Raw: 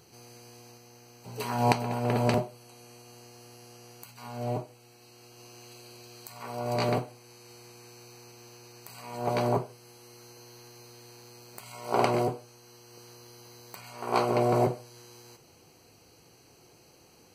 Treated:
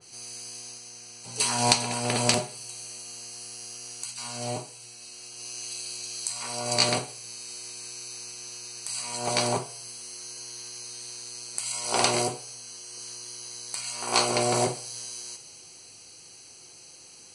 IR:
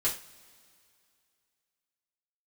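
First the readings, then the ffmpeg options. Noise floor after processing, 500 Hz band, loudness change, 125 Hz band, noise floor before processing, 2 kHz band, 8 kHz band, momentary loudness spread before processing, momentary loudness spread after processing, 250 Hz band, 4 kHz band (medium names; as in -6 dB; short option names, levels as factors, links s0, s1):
-49 dBFS, -1.5 dB, 0.0 dB, -3.5 dB, -58 dBFS, +6.0 dB, +19.0 dB, 23 LU, 19 LU, -2.0 dB, +14.5 dB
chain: -filter_complex "[0:a]volume=6.31,asoftclip=hard,volume=0.158,bandreject=f=139.8:t=h:w=4,bandreject=f=279.6:t=h:w=4,bandreject=f=419.4:t=h:w=4,bandreject=f=559.2:t=h:w=4,bandreject=f=699:t=h:w=4,bandreject=f=838.8:t=h:w=4,bandreject=f=978.6:t=h:w=4,bandreject=f=1118.4:t=h:w=4,bandreject=f=1258.2:t=h:w=4,bandreject=f=1398:t=h:w=4,bandreject=f=1537.8:t=h:w=4,bandreject=f=1677.6:t=h:w=4,bandreject=f=1817.4:t=h:w=4,bandreject=f=1957.2:t=h:w=4,bandreject=f=2097:t=h:w=4,bandreject=f=2236.8:t=h:w=4,bandreject=f=2376.6:t=h:w=4,bandreject=f=2516.4:t=h:w=4,bandreject=f=2656.2:t=h:w=4,bandreject=f=2796:t=h:w=4,bandreject=f=2935.8:t=h:w=4,bandreject=f=3075.6:t=h:w=4,bandreject=f=3215.4:t=h:w=4,bandreject=f=3355.2:t=h:w=4,bandreject=f=3495:t=h:w=4,bandreject=f=3634.8:t=h:w=4,bandreject=f=3774.6:t=h:w=4,bandreject=f=3914.4:t=h:w=4,bandreject=f=4054.2:t=h:w=4,crystalizer=i=8:c=0,asplit=2[s0][s1];[1:a]atrim=start_sample=2205,asetrate=35280,aresample=44100[s2];[s1][s2]afir=irnorm=-1:irlink=0,volume=0.1[s3];[s0][s3]amix=inputs=2:normalize=0,aresample=22050,aresample=44100,adynamicequalizer=threshold=0.00794:dfrequency=2700:dqfactor=0.7:tfrequency=2700:tqfactor=0.7:attack=5:release=100:ratio=0.375:range=2.5:mode=boostabove:tftype=highshelf,volume=0.631"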